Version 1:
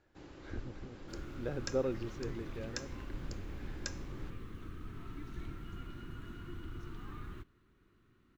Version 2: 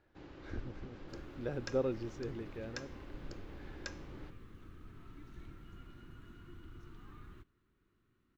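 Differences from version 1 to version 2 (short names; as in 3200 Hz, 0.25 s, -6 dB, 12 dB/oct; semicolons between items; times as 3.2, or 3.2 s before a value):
first sound: add LPF 4300 Hz 12 dB/oct; second sound -7.5 dB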